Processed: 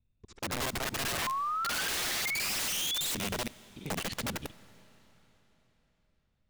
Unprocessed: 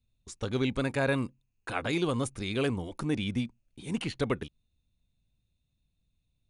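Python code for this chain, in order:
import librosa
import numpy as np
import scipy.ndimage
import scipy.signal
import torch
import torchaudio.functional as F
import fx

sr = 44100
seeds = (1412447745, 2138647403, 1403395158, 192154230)

y = fx.local_reverse(x, sr, ms=47.0)
y = fx.env_lowpass(y, sr, base_hz=2300.0, full_db=-28.0)
y = fx.spec_paint(y, sr, seeds[0], shape='rise', start_s=1.18, length_s=1.97, low_hz=970.0, high_hz=4000.0, level_db=-32.0)
y = (np.mod(10.0 ** (28.0 / 20.0) * y + 1.0, 2.0) - 1.0) / 10.0 ** (28.0 / 20.0)
y = fx.rev_freeverb(y, sr, rt60_s=4.1, hf_ratio=0.95, predelay_ms=50, drr_db=19.5)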